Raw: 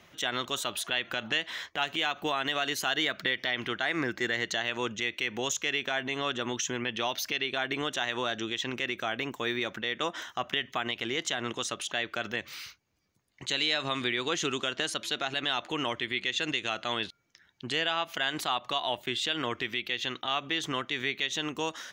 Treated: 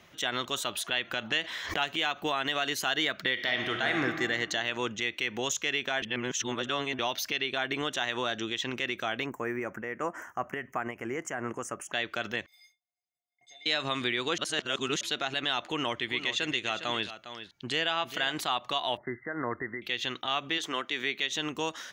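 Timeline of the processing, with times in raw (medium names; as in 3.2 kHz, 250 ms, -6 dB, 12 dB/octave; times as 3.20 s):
1.41–1.89 s: swell ahead of each attack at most 64 dB/s
3.32–4.02 s: reverb throw, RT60 1.7 s, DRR 2.5 dB
6.02–6.99 s: reverse
9.26–11.93 s: Butterworth band-stop 3.8 kHz, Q 0.69
12.46–13.66 s: feedback comb 710 Hz, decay 0.17 s, harmonics odd, mix 100%
14.38–15.01 s: reverse
15.66–18.32 s: delay 406 ms -11.5 dB
18.97–19.82 s: brick-wall FIR low-pass 2.1 kHz
20.57–21.37 s: high-pass 350 Hz -> 140 Hz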